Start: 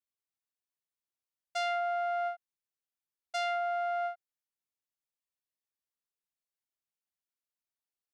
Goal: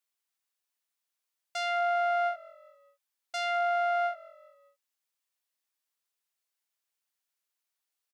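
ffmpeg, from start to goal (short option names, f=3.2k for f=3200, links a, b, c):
-filter_complex "[0:a]highpass=f=840:p=1,alimiter=level_in=5dB:limit=-24dB:level=0:latency=1,volume=-5dB,asplit=2[a][b];[b]asplit=3[c][d][e];[c]adelay=203,afreqshift=-45,volume=-23dB[f];[d]adelay=406,afreqshift=-90,volume=-28.8dB[g];[e]adelay=609,afreqshift=-135,volume=-34.7dB[h];[f][g][h]amix=inputs=3:normalize=0[i];[a][i]amix=inputs=2:normalize=0,volume=8dB"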